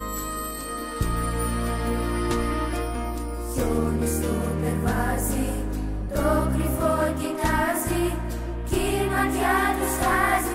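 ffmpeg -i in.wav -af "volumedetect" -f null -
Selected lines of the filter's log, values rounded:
mean_volume: -24.5 dB
max_volume: -8.8 dB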